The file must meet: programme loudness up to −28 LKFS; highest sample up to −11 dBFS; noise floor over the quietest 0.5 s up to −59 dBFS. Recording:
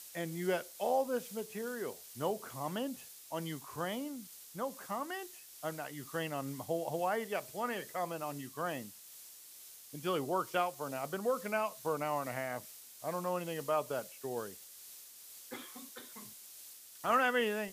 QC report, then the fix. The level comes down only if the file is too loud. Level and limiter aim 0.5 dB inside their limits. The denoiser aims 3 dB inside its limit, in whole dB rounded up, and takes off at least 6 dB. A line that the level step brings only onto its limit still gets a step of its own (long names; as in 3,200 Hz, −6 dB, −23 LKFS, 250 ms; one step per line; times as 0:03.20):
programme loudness −37.5 LKFS: in spec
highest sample −17.5 dBFS: in spec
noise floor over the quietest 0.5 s −54 dBFS: out of spec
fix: broadband denoise 8 dB, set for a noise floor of −54 dBFS